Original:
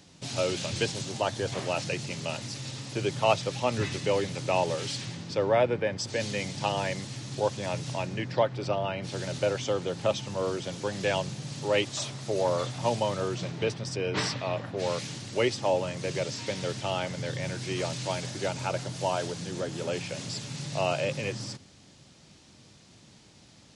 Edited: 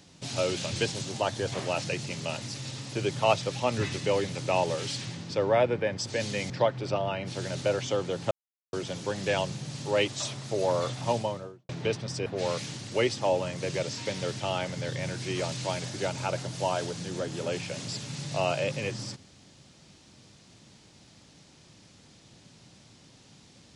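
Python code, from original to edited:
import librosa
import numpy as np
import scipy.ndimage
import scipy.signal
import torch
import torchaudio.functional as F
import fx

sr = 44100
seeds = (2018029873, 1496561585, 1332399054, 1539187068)

y = fx.studio_fade_out(x, sr, start_s=12.83, length_s=0.63)
y = fx.edit(y, sr, fx.cut(start_s=6.5, length_s=1.77),
    fx.silence(start_s=10.08, length_s=0.42),
    fx.cut(start_s=14.03, length_s=0.64), tone=tone)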